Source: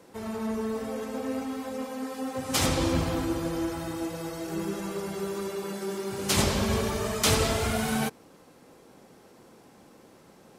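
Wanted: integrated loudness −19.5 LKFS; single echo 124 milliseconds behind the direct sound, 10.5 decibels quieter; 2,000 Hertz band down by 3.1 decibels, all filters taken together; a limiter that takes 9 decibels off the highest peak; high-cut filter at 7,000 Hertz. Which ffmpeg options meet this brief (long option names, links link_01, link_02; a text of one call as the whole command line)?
ffmpeg -i in.wav -af "lowpass=7000,equalizer=frequency=2000:width_type=o:gain=-4,alimiter=limit=-20dB:level=0:latency=1,aecho=1:1:124:0.299,volume=12.5dB" out.wav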